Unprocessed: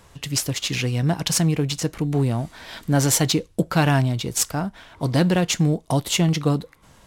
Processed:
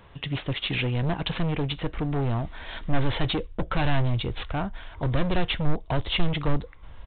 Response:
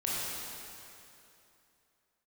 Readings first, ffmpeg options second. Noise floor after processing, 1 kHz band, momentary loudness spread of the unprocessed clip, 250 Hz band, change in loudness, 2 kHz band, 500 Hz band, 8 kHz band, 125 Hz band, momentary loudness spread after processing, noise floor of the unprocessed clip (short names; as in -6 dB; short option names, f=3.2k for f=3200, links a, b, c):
-47 dBFS, -3.5 dB, 8 LU, -7.5 dB, -6.5 dB, -3.0 dB, -5.5 dB, under -40 dB, -5.5 dB, 6 LU, -53 dBFS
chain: -af "aresample=8000,asoftclip=type=hard:threshold=-21dB,aresample=44100,asubboost=boost=10.5:cutoff=55"